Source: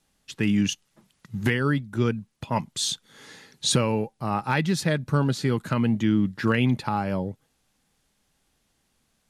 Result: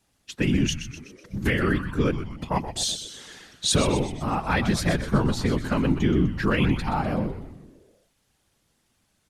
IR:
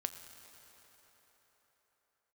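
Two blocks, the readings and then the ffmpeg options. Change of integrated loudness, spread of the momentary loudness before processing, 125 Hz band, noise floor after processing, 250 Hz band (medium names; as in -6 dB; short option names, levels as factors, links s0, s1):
+0.5 dB, 7 LU, 0.0 dB, -70 dBFS, 0.0 dB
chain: -filter_complex "[0:a]afftfilt=real='hypot(re,im)*cos(2*PI*random(0))':imag='hypot(re,im)*sin(2*PI*random(1))':win_size=512:overlap=0.75,asplit=7[s0][s1][s2][s3][s4][s5][s6];[s1]adelay=125,afreqshift=-120,volume=0.316[s7];[s2]adelay=250,afreqshift=-240,volume=0.164[s8];[s3]adelay=375,afreqshift=-360,volume=0.0851[s9];[s4]adelay=500,afreqshift=-480,volume=0.0447[s10];[s5]adelay=625,afreqshift=-600,volume=0.0232[s11];[s6]adelay=750,afreqshift=-720,volume=0.012[s12];[s0][s7][s8][s9][s10][s11][s12]amix=inputs=7:normalize=0,volume=2.11"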